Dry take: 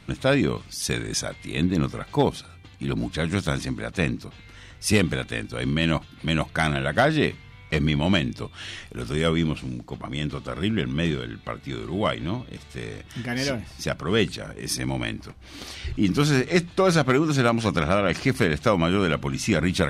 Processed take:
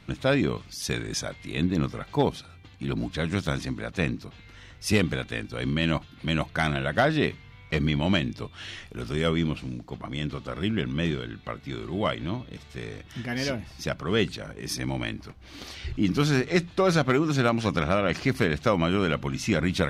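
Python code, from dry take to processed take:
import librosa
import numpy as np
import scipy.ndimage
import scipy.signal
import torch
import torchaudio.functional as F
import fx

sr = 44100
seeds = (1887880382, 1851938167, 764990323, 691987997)

y = fx.peak_eq(x, sr, hz=9100.0, db=-6.0, octaves=0.66)
y = F.gain(torch.from_numpy(y), -2.5).numpy()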